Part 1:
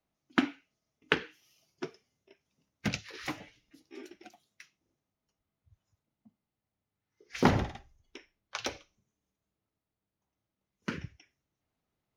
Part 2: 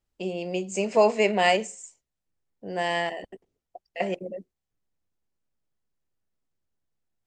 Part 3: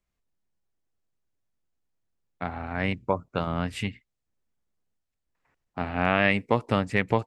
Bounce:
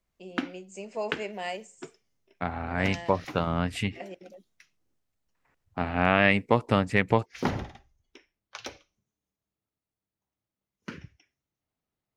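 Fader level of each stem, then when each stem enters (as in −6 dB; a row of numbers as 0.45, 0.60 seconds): −4.0, −13.5, +1.0 decibels; 0.00, 0.00, 0.00 seconds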